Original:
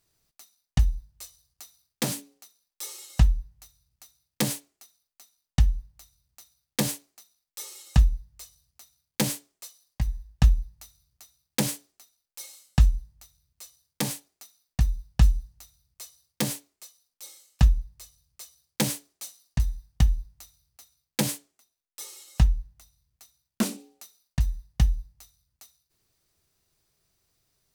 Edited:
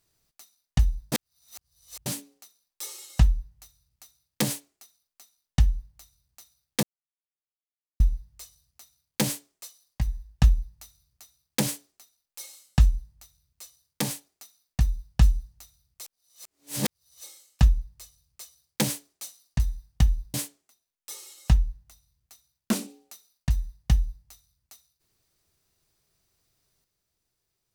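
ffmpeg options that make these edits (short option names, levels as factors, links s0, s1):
-filter_complex "[0:a]asplit=8[s0][s1][s2][s3][s4][s5][s6][s7];[s0]atrim=end=1.122[s8];[s1]atrim=start=1.118:end=2.062,asetpts=PTS-STARTPTS,areverse[s9];[s2]atrim=start=2.058:end=6.83,asetpts=PTS-STARTPTS,afade=t=out:st=4.768:d=0.004:c=hsin[s10];[s3]atrim=start=6.83:end=8,asetpts=PTS-STARTPTS,volume=0[s11];[s4]atrim=start=8:end=16.032,asetpts=PTS-STARTPTS,afade=t=in:d=0.004:c=hsin[s12];[s5]atrim=start=16.028:end=17.242,asetpts=PTS-STARTPTS,areverse[s13];[s6]atrim=start=17.238:end=20.342[s14];[s7]atrim=start=21.238[s15];[s8][s9]acrossfade=d=0.004:c1=hsin:c2=hsin[s16];[s10][s11][s12]concat=n=3:v=0:a=1[s17];[s16][s17]acrossfade=d=0.004:c1=hsin:c2=hsin[s18];[s18][s13]acrossfade=d=0.004:c1=hsin:c2=hsin[s19];[s19][s14]acrossfade=d=0.004:c1=hsin:c2=hsin[s20];[s20][s15]acrossfade=d=0.004:c1=hsin:c2=hsin"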